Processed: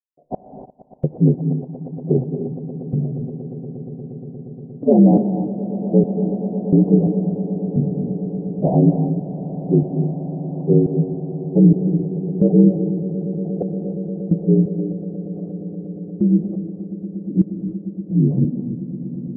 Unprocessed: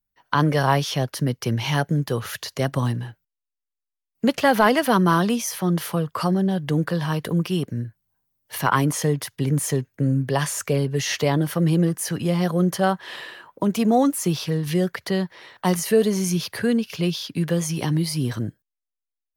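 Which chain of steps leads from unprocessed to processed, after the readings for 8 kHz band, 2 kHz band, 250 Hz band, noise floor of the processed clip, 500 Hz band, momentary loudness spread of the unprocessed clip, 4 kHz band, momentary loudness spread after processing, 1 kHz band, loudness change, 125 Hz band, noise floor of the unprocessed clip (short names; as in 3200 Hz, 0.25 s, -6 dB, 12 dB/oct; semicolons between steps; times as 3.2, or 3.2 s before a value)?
under -40 dB, under -40 dB, +5.5 dB, -38 dBFS, +1.5 dB, 8 LU, under -40 dB, 16 LU, -11.0 dB, +3.0 dB, +4.0 dB, -85 dBFS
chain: inharmonic rescaling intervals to 77%; steep low-pass 610 Hz 48 dB/oct; in parallel at -3 dB: compressor, threshold -30 dBFS, peak gain reduction 16 dB; on the sum: step gate ".x....xx..." 87 bpm -60 dB; swelling echo 0.118 s, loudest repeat 8, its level -18 dB; non-linear reverb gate 0.32 s rising, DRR 7 dB; gain +7.5 dB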